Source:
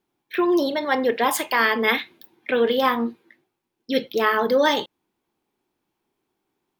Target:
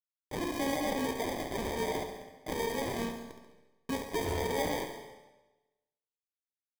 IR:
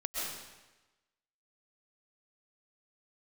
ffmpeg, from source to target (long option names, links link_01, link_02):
-filter_complex "[0:a]acrossover=split=3000[link_01][link_02];[link_02]acompressor=threshold=-37dB:ratio=4:attack=1:release=60[link_03];[link_01][link_03]amix=inputs=2:normalize=0,asplit=3[link_04][link_05][link_06];[link_05]asetrate=33038,aresample=44100,atempo=1.33484,volume=-15dB[link_07];[link_06]asetrate=37084,aresample=44100,atempo=1.18921,volume=-9dB[link_08];[link_04][link_07][link_08]amix=inputs=3:normalize=0,acompressor=threshold=-25dB:ratio=6,alimiter=level_in=4.5dB:limit=-24dB:level=0:latency=1:release=157,volume=-4.5dB,aresample=8000,acrusher=bits=6:mix=0:aa=0.000001,aresample=44100,aecho=1:1:7:0.57,acrusher=samples=32:mix=1:aa=0.000001,aecho=1:1:69|138|207|276|345:0.398|0.187|0.0879|0.0413|0.0194,asplit=2[link_09][link_10];[1:a]atrim=start_sample=2205[link_11];[link_10][link_11]afir=irnorm=-1:irlink=0,volume=-12.5dB[link_12];[link_09][link_12]amix=inputs=2:normalize=0"